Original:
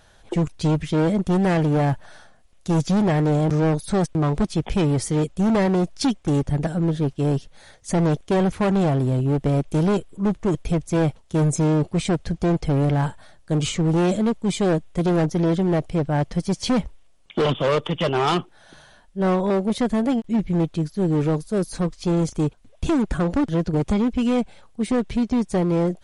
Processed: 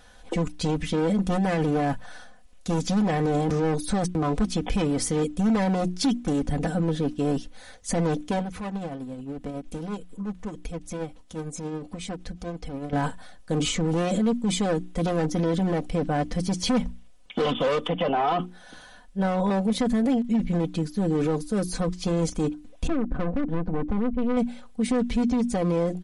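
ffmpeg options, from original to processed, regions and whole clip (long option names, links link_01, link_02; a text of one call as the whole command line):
ffmpeg -i in.wav -filter_complex "[0:a]asettb=1/sr,asplit=3[link_01][link_02][link_03];[link_01]atrim=end=8.394[link_04];[link_02]atrim=start=8.39:end=12.93,asetpts=PTS-STARTPTS,afade=type=in:duration=0.004:curve=qsin,afade=type=out:start_time=4.536:duration=0.004:curve=qsin,acompressor=threshold=-32dB:ratio=4:attack=3.2:release=140:knee=1:detection=peak,tremolo=f=11:d=0.42[link_05];[link_03]atrim=start=12.926[link_06];[link_04][link_05]acrossfade=duration=0.004:curve1=hsin:curve2=qsin[link_07];[link_07][link_06]acrossfade=duration=0.004:curve1=qsin:curve2=hsin,asettb=1/sr,asplit=3[link_08][link_09][link_10];[link_08]atrim=end=17.894[link_11];[link_09]atrim=start=17.89:end=18.39,asetpts=PTS-STARTPTS,afade=type=in:duration=0.004:curve=qsin,afade=type=out:start_time=0.496:duration=0.004:curve=qsin,lowpass=2700,equalizer=frequency=680:width=2.4:gain=11,bandreject=frequency=1200:width=29[link_12];[link_10]atrim=start=18.386[link_13];[link_11][link_12]acrossfade=duration=0.004:curve1=hsin:curve2=qsin[link_14];[link_14][link_13]acrossfade=duration=0.004:curve1=qsin:curve2=hsin,asettb=1/sr,asplit=3[link_15][link_16][link_17];[link_15]atrim=end=22.874[link_18];[link_16]atrim=start=22.87:end=24.37,asetpts=PTS-STARTPTS,afade=type=in:duration=0.004:curve=qsin,afade=type=out:start_time=1.496:duration=0.004:curve=qsin,aeval=exprs='clip(val(0),-1,0.0237)':channel_layout=same,adynamicsmooth=sensitivity=0.5:basefreq=1000[link_19];[link_17]atrim=start=24.366[link_20];[link_18][link_19]acrossfade=duration=0.004:curve1=hsin:curve2=qsin[link_21];[link_21][link_20]acrossfade=duration=0.004:curve1=qsin:curve2=hsin,bandreject=frequency=60:width_type=h:width=6,bandreject=frequency=120:width_type=h:width=6,bandreject=frequency=180:width_type=h:width=6,bandreject=frequency=240:width_type=h:width=6,bandreject=frequency=300:width_type=h:width=6,bandreject=frequency=360:width_type=h:width=6,aecho=1:1:4:0.7,alimiter=limit=-17dB:level=0:latency=1:release=24" out.wav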